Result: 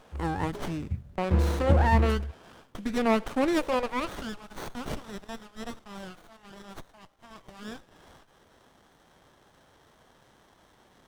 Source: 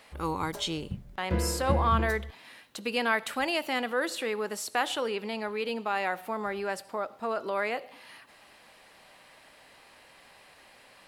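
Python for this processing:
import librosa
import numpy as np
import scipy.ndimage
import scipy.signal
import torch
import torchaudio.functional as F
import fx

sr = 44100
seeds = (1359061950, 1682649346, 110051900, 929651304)

y = fx.filter_sweep_highpass(x, sr, from_hz=73.0, to_hz=3300.0, start_s=2.74, end_s=4.56, q=1.7)
y = fx.formant_shift(y, sr, semitones=-4)
y = fx.running_max(y, sr, window=17)
y = F.gain(torch.from_numpy(y), 2.0).numpy()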